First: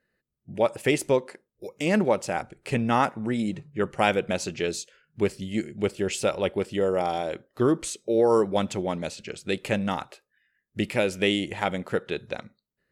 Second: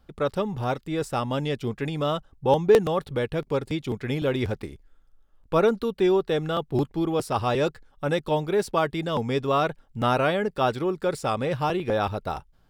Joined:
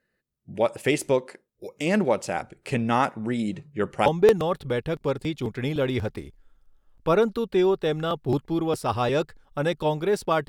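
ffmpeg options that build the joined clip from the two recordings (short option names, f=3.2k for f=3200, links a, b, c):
-filter_complex "[0:a]apad=whole_dur=10.48,atrim=end=10.48,atrim=end=4.062[a];[1:a]atrim=start=2.518:end=8.94[b];[a][b]acrossfade=d=0.004:c1=hsin:c2=hsin"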